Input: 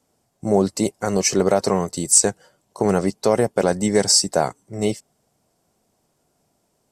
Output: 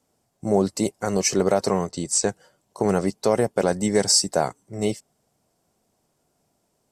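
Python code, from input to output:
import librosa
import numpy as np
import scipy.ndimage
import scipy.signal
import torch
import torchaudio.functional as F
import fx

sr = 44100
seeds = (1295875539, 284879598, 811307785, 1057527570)

y = fx.lowpass(x, sr, hz=6100.0, slope=12, at=(1.87, 2.29))
y = y * 10.0 ** (-2.5 / 20.0)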